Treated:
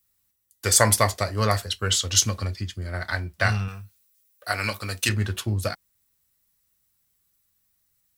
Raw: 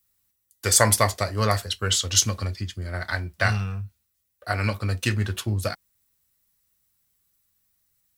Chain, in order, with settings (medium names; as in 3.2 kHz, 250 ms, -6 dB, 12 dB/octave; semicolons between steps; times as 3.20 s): 3.68–5.09 s: tilt EQ +2.5 dB/octave